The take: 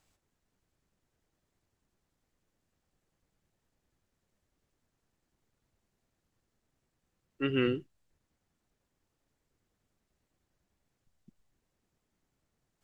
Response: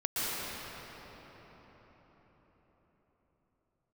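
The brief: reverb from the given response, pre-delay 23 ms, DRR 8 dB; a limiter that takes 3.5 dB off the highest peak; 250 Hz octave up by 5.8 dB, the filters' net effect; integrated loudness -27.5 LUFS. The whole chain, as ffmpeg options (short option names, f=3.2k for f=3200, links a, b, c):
-filter_complex "[0:a]equalizer=f=250:t=o:g=6.5,alimiter=limit=-18.5dB:level=0:latency=1,asplit=2[a][b];[1:a]atrim=start_sample=2205,adelay=23[c];[b][c]afir=irnorm=-1:irlink=0,volume=-17.5dB[d];[a][d]amix=inputs=2:normalize=0,volume=5.5dB"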